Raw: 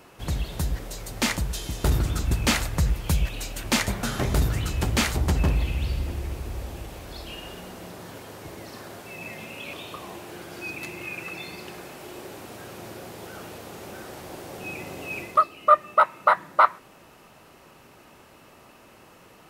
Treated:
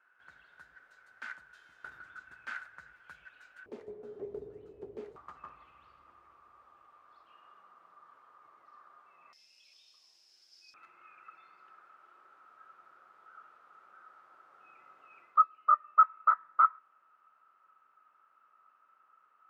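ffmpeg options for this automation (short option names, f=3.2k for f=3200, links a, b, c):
-af "asetnsamples=n=441:p=0,asendcmd='3.66 bandpass f 420;5.16 bandpass f 1200;9.33 bandpass f 5200;10.74 bandpass f 1300',bandpass=f=1.5k:t=q:w=17:csg=0"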